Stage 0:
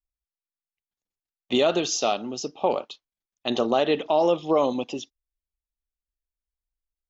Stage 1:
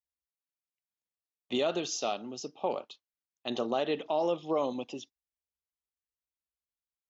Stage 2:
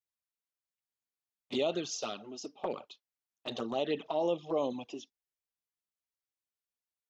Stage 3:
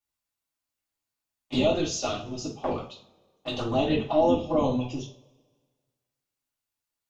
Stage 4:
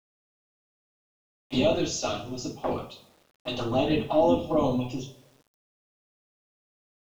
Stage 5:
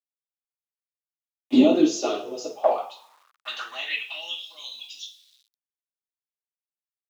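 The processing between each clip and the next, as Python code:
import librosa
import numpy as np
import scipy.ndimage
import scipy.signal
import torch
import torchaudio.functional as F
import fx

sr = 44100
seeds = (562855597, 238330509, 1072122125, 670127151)

y1 = scipy.signal.sosfilt(scipy.signal.butter(4, 61.0, 'highpass', fs=sr, output='sos'), x)
y1 = y1 * librosa.db_to_amplitude(-8.5)
y2 = fx.env_flanger(y1, sr, rest_ms=9.1, full_db=-25.0)
y3 = fx.octave_divider(y2, sr, octaves=1, level_db=3.0)
y3 = fx.rev_double_slope(y3, sr, seeds[0], early_s=0.34, late_s=1.6, knee_db=-25, drr_db=-6.5)
y4 = fx.quant_dither(y3, sr, seeds[1], bits=10, dither='none')
y5 = fx.filter_sweep_highpass(y4, sr, from_hz=280.0, to_hz=3800.0, start_s=1.81, end_s=4.54, q=5.5)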